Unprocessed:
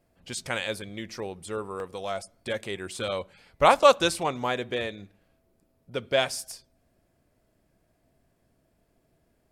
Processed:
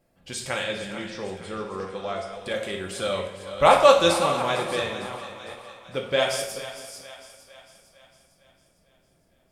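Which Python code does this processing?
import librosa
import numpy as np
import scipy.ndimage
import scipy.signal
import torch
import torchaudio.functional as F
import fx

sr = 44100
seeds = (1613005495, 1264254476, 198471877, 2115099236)

y = fx.reverse_delay(x, sr, ms=369, wet_db=-10.5)
y = fx.air_absorb(y, sr, metres=90.0, at=(0.63, 2.33))
y = fx.echo_split(y, sr, split_hz=590.0, low_ms=208, high_ms=454, feedback_pct=52, wet_db=-13.5)
y = fx.rev_double_slope(y, sr, seeds[0], early_s=0.58, late_s=2.4, knee_db=-18, drr_db=1.0)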